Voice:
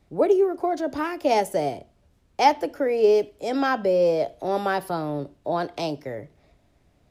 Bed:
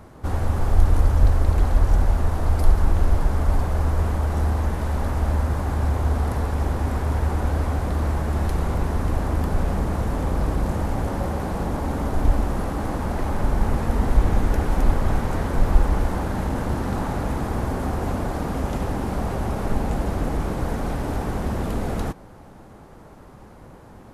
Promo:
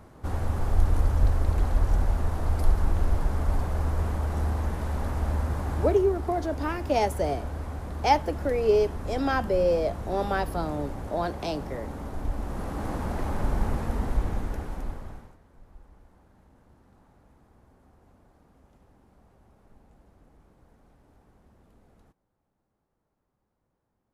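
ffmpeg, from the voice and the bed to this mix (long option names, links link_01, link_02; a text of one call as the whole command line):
ffmpeg -i stem1.wav -i stem2.wav -filter_complex "[0:a]adelay=5650,volume=-3.5dB[link_01];[1:a]volume=1dB,afade=type=out:start_time=5.81:duration=0.24:silence=0.501187,afade=type=in:start_time=12.34:duration=0.57:silence=0.473151,afade=type=out:start_time=13.55:duration=1.82:silence=0.0354813[link_02];[link_01][link_02]amix=inputs=2:normalize=0" out.wav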